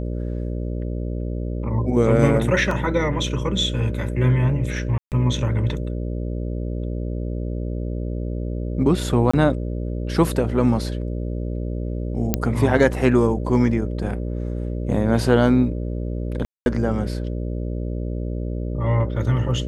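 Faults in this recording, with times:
buzz 60 Hz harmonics 10 -26 dBFS
2.71 s: dropout 2.8 ms
4.98–5.12 s: dropout 138 ms
9.31–9.34 s: dropout 25 ms
12.34 s: pop -4 dBFS
16.45–16.66 s: dropout 211 ms

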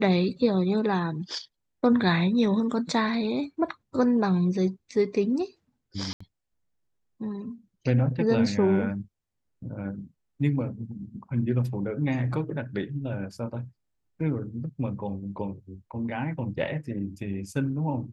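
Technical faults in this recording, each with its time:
6.13–6.21 s: dropout 75 ms

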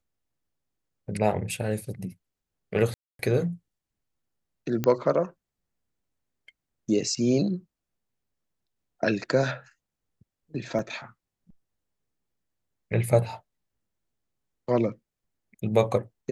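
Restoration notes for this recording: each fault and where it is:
2.94–3.19 s: dropout 252 ms
4.84 s: pop -12 dBFS
10.79 s: dropout 2.2 ms

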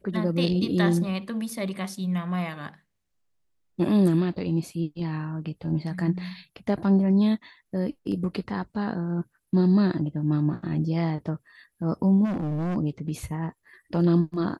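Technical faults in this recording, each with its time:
12.24–12.77 s: clipped -25.5 dBFS

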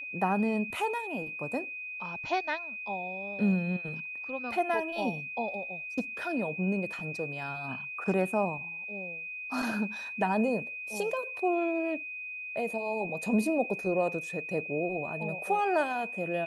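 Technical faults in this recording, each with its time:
whine 2.5 kHz -37 dBFS

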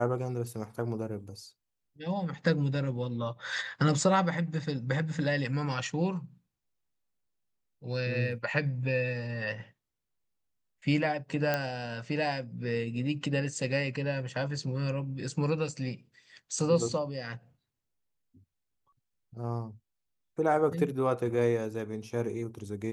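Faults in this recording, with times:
11.54 s: pop -14 dBFS

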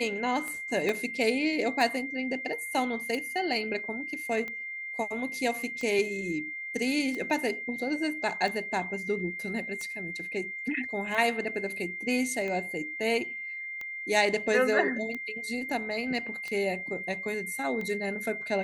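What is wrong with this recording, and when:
tick 45 rpm -24 dBFS
whine 2.1 kHz -35 dBFS
0.89 s: dropout 2.2 ms

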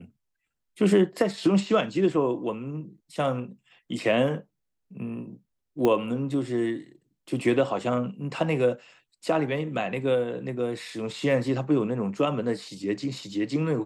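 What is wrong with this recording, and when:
5.85 s: pop -12 dBFS

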